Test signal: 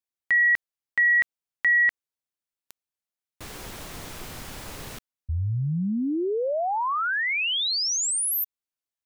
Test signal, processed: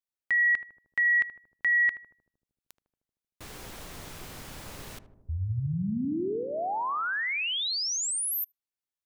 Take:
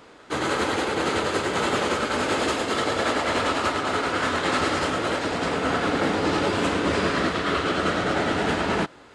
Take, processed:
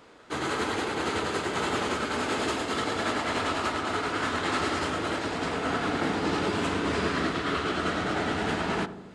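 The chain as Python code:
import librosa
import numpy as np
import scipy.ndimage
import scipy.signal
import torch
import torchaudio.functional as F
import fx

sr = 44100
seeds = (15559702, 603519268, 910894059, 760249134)

y = fx.dynamic_eq(x, sr, hz=540.0, q=6.6, threshold_db=-45.0, ratio=10.0, max_db=-7)
y = fx.echo_filtered(y, sr, ms=77, feedback_pct=75, hz=820.0, wet_db=-10.0)
y = y * librosa.db_to_amplitude(-4.5)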